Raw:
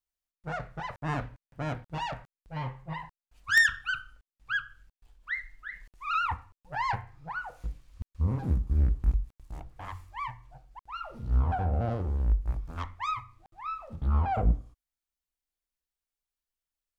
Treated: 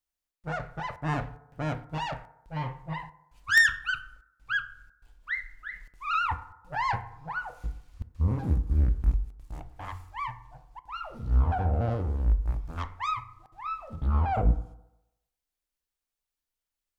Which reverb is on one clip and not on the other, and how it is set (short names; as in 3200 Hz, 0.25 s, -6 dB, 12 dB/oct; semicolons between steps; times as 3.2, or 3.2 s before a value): FDN reverb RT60 0.94 s, low-frequency decay 0.8×, high-frequency decay 0.35×, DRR 13 dB; gain +1.5 dB